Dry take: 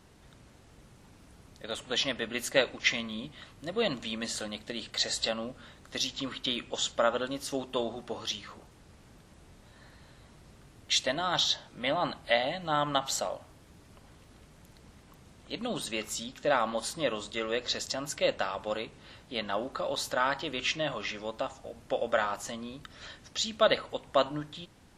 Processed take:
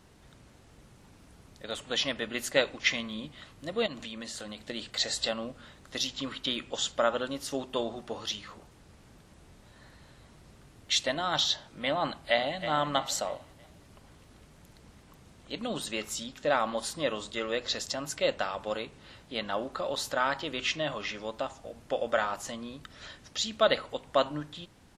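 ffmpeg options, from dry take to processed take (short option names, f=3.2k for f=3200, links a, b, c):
-filter_complex "[0:a]asettb=1/sr,asplit=3[a][b][c];[a]atrim=end=3.864[d];[b]atrim=start=3.86:end=4.61,asetpts=PTS-STARTPTS,afade=t=in:d=0.004:c=qsin,afade=t=out:st=0.746:d=0.004:c=qsin,acompressor=threshold=-36dB:ratio=5:attack=3.2:release=140:knee=1:detection=peak[e];[c]atrim=start=4.606[f];[d][e]acrossfade=d=0.004:c1=hsin:c2=qsin[g];[g][f]acrossfade=d=0.004:c1=qsin:c2=hsin,asplit=2[h][i];[i]afade=t=in:st=12.06:d=0.01,afade=t=out:st=12.7:d=0.01,aecho=0:1:320|640|960|1280:0.298538|0.119415|0.0477661|0.0191064[j];[h][j]amix=inputs=2:normalize=0"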